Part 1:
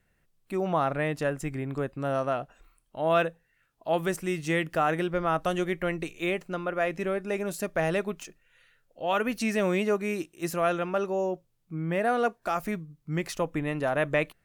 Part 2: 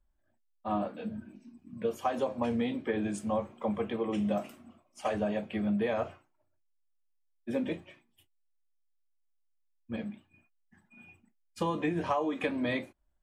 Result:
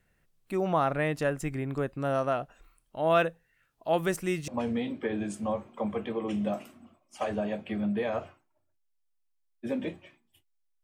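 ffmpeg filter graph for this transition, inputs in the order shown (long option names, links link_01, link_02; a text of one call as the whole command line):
ffmpeg -i cue0.wav -i cue1.wav -filter_complex "[0:a]apad=whole_dur=10.83,atrim=end=10.83,atrim=end=4.482[link_01];[1:a]atrim=start=2.318:end=8.67[link_02];[link_01][link_02]acrossfade=duration=0.004:curve1=hsin:curve2=hsin" out.wav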